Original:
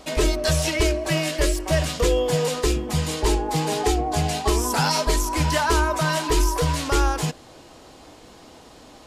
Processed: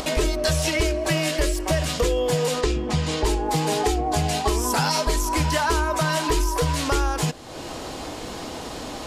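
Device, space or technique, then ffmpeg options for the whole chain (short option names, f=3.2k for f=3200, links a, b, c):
upward and downward compression: -filter_complex "[0:a]acompressor=mode=upward:threshold=-27dB:ratio=2.5,acompressor=threshold=-23dB:ratio=4,asettb=1/sr,asplit=3[a][b][c];[a]atrim=end=2.614[d];[b]atrim=start=2.61:end=3.25,asetpts=PTS-STARTPTS,afade=t=in:d=0.004:c=qsin,afade=t=out:st=0.636:d=0.004:c=qsin,lowpass=5.9k[e];[c]atrim=start=3.246[f];[d][e]acrossfade=d=0.004:c1=hsin:c2=qsin[g];[g][f]acrossfade=d=0.004:c1=qsin:c2=hsin,volume=4dB"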